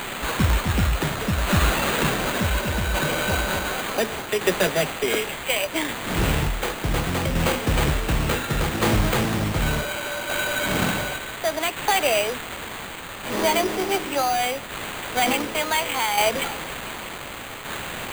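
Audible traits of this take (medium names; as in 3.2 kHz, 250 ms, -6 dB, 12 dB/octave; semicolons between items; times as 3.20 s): a quantiser's noise floor 6-bit, dither triangular; tremolo saw down 0.68 Hz, depth 45%; aliases and images of a low sample rate 5.4 kHz, jitter 0%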